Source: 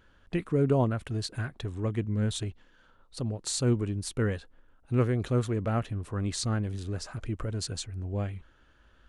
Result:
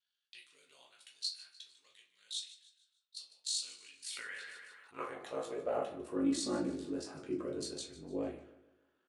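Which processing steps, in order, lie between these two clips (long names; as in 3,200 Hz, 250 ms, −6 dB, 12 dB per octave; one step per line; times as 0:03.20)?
noise gate −51 dBFS, range −10 dB
0:01.91–0:03.50: low-shelf EQ 280 Hz −11 dB
0:06.15–0:06.73: comb filter 3.5 ms, depth 80%
dynamic equaliser 1,500 Hz, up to −5 dB, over −49 dBFS, Q 1.1
high-pass filter sweep 3,900 Hz → 320 Hz, 0:03.46–0:06.21
ring modulation 25 Hz
repeating echo 150 ms, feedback 42%, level −16.5 dB
convolution reverb RT60 0.40 s, pre-delay 7 ms, DRR −2.5 dB
0:04.04–0:05.02: level that may fall only so fast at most 29 dB per second
level −7 dB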